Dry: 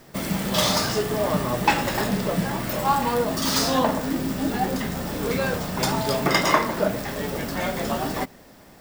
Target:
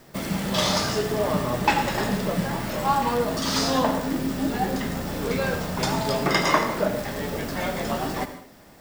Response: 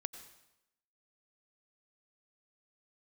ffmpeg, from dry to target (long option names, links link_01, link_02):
-filter_complex "[1:a]atrim=start_sample=2205,afade=type=out:start_time=0.33:duration=0.01,atrim=end_sample=14994,asetrate=52920,aresample=44100[link_01];[0:a][link_01]afir=irnorm=-1:irlink=0,acrossover=split=7600[link_02][link_03];[link_03]acompressor=threshold=-41dB:ratio=4:attack=1:release=60[link_04];[link_02][link_04]amix=inputs=2:normalize=0,volume=2.5dB"